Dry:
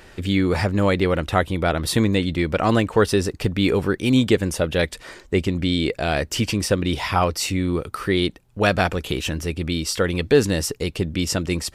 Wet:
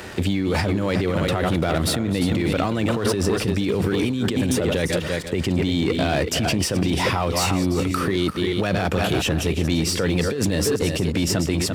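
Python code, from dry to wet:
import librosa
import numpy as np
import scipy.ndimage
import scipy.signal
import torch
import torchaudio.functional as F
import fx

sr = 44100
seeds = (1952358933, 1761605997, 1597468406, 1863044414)

y = fx.reverse_delay(x, sr, ms=203, wet_db=-10)
y = fx.low_shelf(y, sr, hz=450.0, db=4.0)
y = y + 10.0 ** (-12.0 / 20.0) * np.pad(y, (int(342 * sr / 1000.0), 0))[:len(y)]
y = fx.over_compress(y, sr, threshold_db=-20.0, ratio=-1.0)
y = fx.leveller(y, sr, passes=2)
y = scipy.signal.sosfilt(scipy.signal.butter(2, 86.0, 'highpass', fs=sr, output='sos'), y)
y = fx.band_squash(y, sr, depth_pct=40)
y = y * librosa.db_to_amplitude(-6.5)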